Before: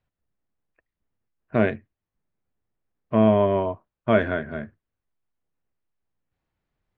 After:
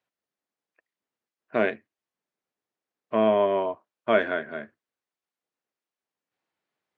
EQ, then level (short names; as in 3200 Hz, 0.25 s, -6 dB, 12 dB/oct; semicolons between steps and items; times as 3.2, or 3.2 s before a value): HPF 320 Hz 12 dB/oct; air absorption 60 m; high shelf 2800 Hz +7 dB; -1.0 dB